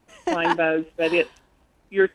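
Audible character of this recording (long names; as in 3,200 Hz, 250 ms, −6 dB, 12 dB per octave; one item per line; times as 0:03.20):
background noise floor −63 dBFS
spectral slope −2.5 dB per octave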